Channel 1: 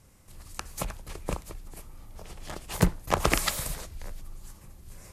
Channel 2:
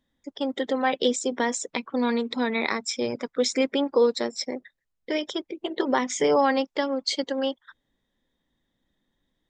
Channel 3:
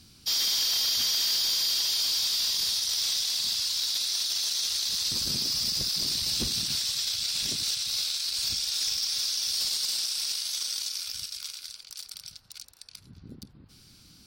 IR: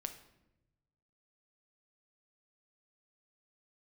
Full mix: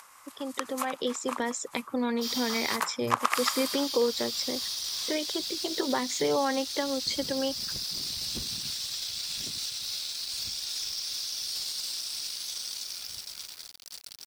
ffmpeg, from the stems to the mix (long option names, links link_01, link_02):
-filter_complex "[0:a]acompressor=mode=upward:threshold=-44dB:ratio=2.5,highpass=frequency=1100:width_type=q:width=3.4,volume=-0.5dB,asplit=2[link_01][link_02];[link_02]volume=-6.5dB[link_03];[1:a]equalizer=frequency=110:width=2.2:gain=11.5,dynaudnorm=framelen=140:gausssize=17:maxgain=11.5dB,volume=-7.5dB[link_04];[2:a]acrusher=bits=6:mix=0:aa=0.000001,adelay=1950,volume=-3.5dB,asplit=3[link_05][link_06][link_07];[link_05]atrim=end=2.76,asetpts=PTS-STARTPTS,afade=type=out:start_time=2.756:duration=0.004:curve=hsin[link_08];[link_06]atrim=start=2.76:end=3.35,asetpts=PTS-STARTPTS,volume=0[link_09];[link_07]atrim=start=3.35,asetpts=PTS-STARTPTS,afade=type=in:duration=0.004:curve=hsin[link_10];[link_08][link_09][link_10]concat=n=3:v=0:a=1[link_11];[3:a]atrim=start_sample=2205[link_12];[link_03][link_12]afir=irnorm=-1:irlink=0[link_13];[link_01][link_04][link_11][link_13]amix=inputs=4:normalize=0,acompressor=threshold=-34dB:ratio=1.5"